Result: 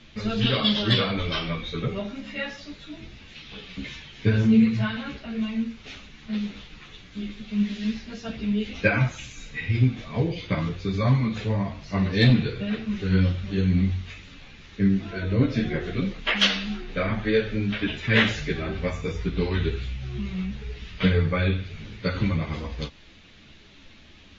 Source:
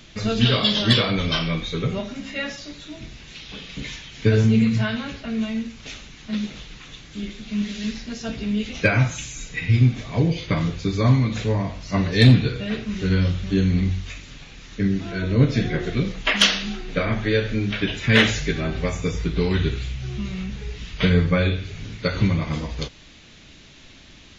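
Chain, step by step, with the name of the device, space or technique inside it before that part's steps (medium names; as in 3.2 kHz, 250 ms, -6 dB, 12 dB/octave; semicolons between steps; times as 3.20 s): string-machine ensemble chorus (three-phase chorus; low-pass 4.4 kHz 12 dB/octave)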